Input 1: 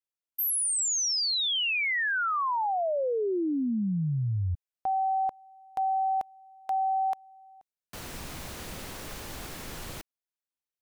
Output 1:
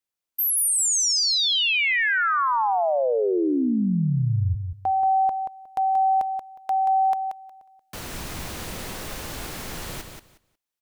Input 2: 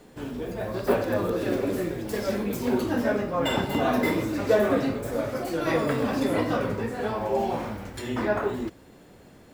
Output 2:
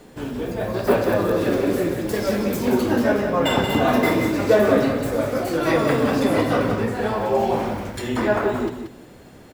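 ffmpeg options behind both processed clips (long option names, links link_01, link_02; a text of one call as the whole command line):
ffmpeg -i in.wav -af "acontrast=32,aecho=1:1:181|362|543:0.447|0.0804|0.0145" out.wav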